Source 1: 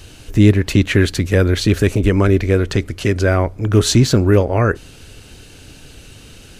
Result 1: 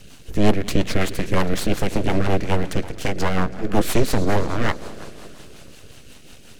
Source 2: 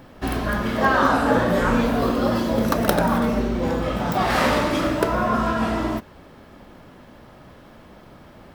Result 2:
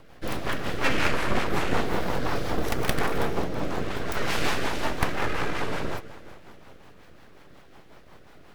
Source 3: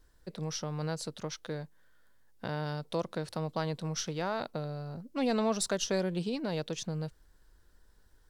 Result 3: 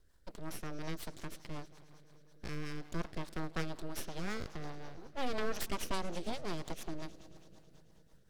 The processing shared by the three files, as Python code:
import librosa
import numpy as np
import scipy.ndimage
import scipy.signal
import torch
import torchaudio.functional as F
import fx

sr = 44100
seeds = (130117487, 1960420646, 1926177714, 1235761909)

y = fx.echo_heads(x, sr, ms=108, heads='all three', feedback_pct=63, wet_db=-23)
y = np.abs(y)
y = fx.rotary(y, sr, hz=5.5)
y = y * 10.0 ** (-1.0 / 20.0)